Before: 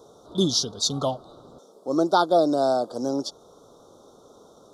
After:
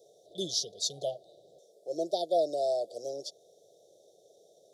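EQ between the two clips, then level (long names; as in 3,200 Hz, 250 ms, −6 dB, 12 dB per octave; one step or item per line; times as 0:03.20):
high-pass filter 220 Hz 12 dB per octave
elliptic band-stop filter 670–2,400 Hz, stop band 40 dB
phaser with its sweep stopped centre 620 Hz, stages 4
−5.5 dB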